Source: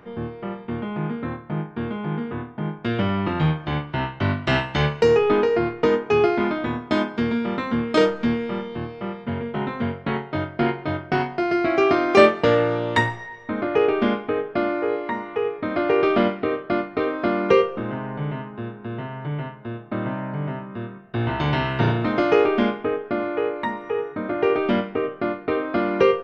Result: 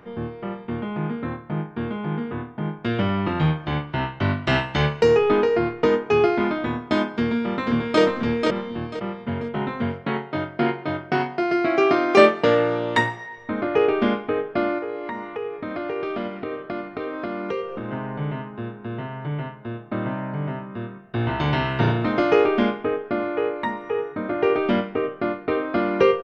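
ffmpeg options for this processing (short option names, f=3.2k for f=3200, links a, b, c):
-filter_complex "[0:a]asplit=2[a][b];[b]afade=t=in:st=7.16:d=0.01,afade=t=out:st=8.01:d=0.01,aecho=0:1:490|980|1470|1960:0.668344|0.167086|0.0417715|0.0104429[c];[a][c]amix=inputs=2:normalize=0,asettb=1/sr,asplit=3[d][e][f];[d]atrim=end=10.014[g];[e]atrim=start=10.01:end=13.38,asetpts=PTS-STARTPTS,afade=t=in:d=0.004:c=qsin,afade=t=out:st=3.366:d=0.004:c=qsin,highpass=130[h];[f]atrim=start=13.376[i];[g][h]acrossfade=d=0.004:c1=hsin:c2=qsin[j];[j][i]acrossfade=d=0.004:c1=qsin:c2=hsin,asettb=1/sr,asplit=3[k][l][m];[k]atrim=end=14.784[n];[l]atrim=start=14.78:end=17.92,asetpts=PTS-STARTPTS,afade=t=in:d=0.004:c=qsin,afade=t=out:st=3.136:d=0.004:c=qsin,acompressor=threshold=-27dB:ratio=3:attack=3.2:release=140:knee=1:detection=peak[o];[m]atrim=start=17.916[p];[n][o]acrossfade=d=0.004:c1=hsin:c2=qsin[q];[q][p]acrossfade=d=0.004:c1=qsin:c2=hsin"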